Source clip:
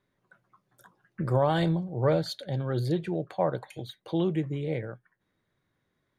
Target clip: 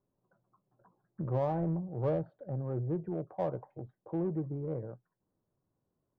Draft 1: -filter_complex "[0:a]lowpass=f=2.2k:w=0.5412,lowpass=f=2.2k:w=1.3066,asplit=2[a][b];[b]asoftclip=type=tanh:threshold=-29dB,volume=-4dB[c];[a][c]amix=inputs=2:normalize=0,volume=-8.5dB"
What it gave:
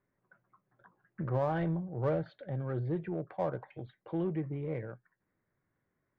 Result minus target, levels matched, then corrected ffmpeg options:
2000 Hz band +10.0 dB
-filter_complex "[0:a]lowpass=f=1k:w=0.5412,lowpass=f=1k:w=1.3066,asplit=2[a][b];[b]asoftclip=type=tanh:threshold=-29dB,volume=-4dB[c];[a][c]amix=inputs=2:normalize=0,volume=-8.5dB"

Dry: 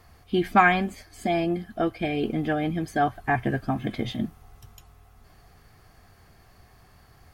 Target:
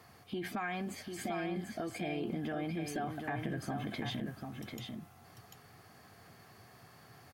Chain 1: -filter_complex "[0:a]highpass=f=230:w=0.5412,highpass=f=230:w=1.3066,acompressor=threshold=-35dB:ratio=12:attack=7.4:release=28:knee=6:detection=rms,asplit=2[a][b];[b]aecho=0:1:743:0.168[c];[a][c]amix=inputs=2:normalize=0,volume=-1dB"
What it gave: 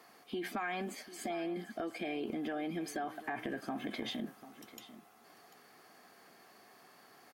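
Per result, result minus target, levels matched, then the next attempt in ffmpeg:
125 Hz band -10.0 dB; echo-to-direct -10 dB
-filter_complex "[0:a]highpass=f=110:w=0.5412,highpass=f=110:w=1.3066,acompressor=threshold=-35dB:ratio=12:attack=7.4:release=28:knee=6:detection=rms,asplit=2[a][b];[b]aecho=0:1:743:0.168[c];[a][c]amix=inputs=2:normalize=0,volume=-1dB"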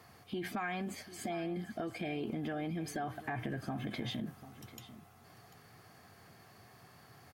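echo-to-direct -10 dB
-filter_complex "[0:a]highpass=f=110:w=0.5412,highpass=f=110:w=1.3066,acompressor=threshold=-35dB:ratio=12:attack=7.4:release=28:knee=6:detection=rms,asplit=2[a][b];[b]aecho=0:1:743:0.531[c];[a][c]amix=inputs=2:normalize=0,volume=-1dB"

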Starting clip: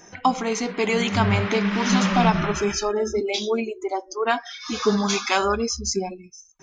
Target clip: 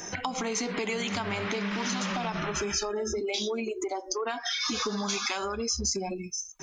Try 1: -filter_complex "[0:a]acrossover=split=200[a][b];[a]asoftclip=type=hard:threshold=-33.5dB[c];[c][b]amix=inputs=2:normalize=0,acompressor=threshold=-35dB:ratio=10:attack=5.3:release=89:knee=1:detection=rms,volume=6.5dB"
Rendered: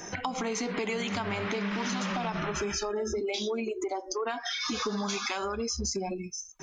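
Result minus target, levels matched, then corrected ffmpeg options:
8000 Hz band -3.0 dB
-filter_complex "[0:a]acrossover=split=200[a][b];[a]asoftclip=type=hard:threshold=-33.5dB[c];[c][b]amix=inputs=2:normalize=0,acompressor=threshold=-35dB:ratio=10:attack=5.3:release=89:knee=1:detection=rms,highshelf=f=3.6k:g=5.5,volume=6.5dB"

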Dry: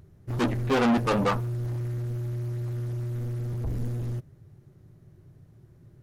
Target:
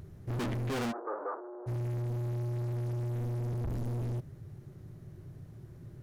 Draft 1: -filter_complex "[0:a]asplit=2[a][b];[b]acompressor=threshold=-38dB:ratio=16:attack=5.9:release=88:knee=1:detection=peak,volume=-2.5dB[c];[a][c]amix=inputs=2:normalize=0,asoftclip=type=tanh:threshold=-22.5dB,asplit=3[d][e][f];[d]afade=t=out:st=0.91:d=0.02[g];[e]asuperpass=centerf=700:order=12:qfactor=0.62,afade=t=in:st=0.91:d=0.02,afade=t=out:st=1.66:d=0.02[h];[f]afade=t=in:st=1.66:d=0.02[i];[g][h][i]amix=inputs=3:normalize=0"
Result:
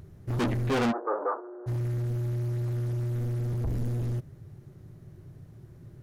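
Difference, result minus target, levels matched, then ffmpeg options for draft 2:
soft clip: distortion -6 dB
-filter_complex "[0:a]asplit=2[a][b];[b]acompressor=threshold=-38dB:ratio=16:attack=5.9:release=88:knee=1:detection=peak,volume=-2.5dB[c];[a][c]amix=inputs=2:normalize=0,asoftclip=type=tanh:threshold=-32dB,asplit=3[d][e][f];[d]afade=t=out:st=0.91:d=0.02[g];[e]asuperpass=centerf=700:order=12:qfactor=0.62,afade=t=in:st=0.91:d=0.02,afade=t=out:st=1.66:d=0.02[h];[f]afade=t=in:st=1.66:d=0.02[i];[g][h][i]amix=inputs=3:normalize=0"

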